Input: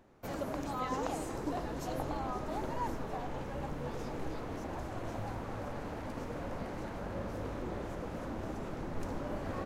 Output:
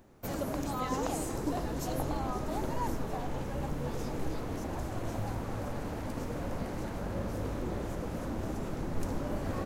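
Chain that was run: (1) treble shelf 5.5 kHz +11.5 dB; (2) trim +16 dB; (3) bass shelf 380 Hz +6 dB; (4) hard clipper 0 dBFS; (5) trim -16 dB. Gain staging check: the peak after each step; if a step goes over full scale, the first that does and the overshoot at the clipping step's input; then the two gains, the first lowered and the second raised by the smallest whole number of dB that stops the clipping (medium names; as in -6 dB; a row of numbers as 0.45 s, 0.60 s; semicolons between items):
-19.0 dBFS, -3.0 dBFS, -2.5 dBFS, -2.5 dBFS, -18.5 dBFS; nothing clips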